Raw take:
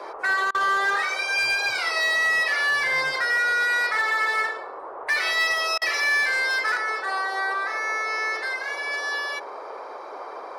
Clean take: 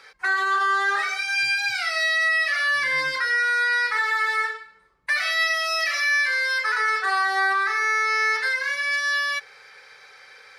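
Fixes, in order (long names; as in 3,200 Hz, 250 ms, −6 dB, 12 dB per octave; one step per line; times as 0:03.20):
clipped peaks rebuilt −17.5 dBFS
repair the gap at 0:00.51/0:05.78, 35 ms
noise reduction from a noise print 12 dB
level 0 dB, from 0:06.77 +5 dB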